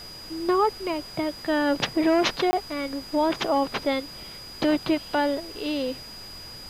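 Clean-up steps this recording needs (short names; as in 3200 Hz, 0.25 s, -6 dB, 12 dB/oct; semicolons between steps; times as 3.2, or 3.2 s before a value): notch 4900 Hz, Q 30; interpolate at 2.51, 20 ms; noise print and reduce 29 dB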